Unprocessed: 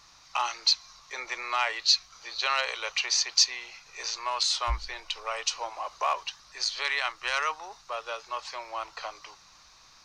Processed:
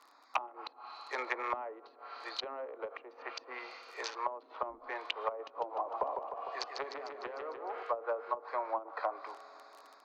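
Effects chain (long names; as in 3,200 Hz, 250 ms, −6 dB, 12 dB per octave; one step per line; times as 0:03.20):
adaptive Wiener filter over 15 samples
treble cut that deepens with the level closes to 2,000 Hz, closed at −24 dBFS
convolution reverb RT60 3.9 s, pre-delay 3 ms, DRR 15 dB
automatic gain control gain up to 5 dB
surface crackle 28 per second −41 dBFS
elliptic high-pass filter 260 Hz, stop band 40 dB
treble cut that deepens with the level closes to 330 Hz, closed at −26.5 dBFS
0:05.42–0:07.83: feedback echo with a swinging delay time 151 ms, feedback 62%, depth 112 cents, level −6 dB
level +1 dB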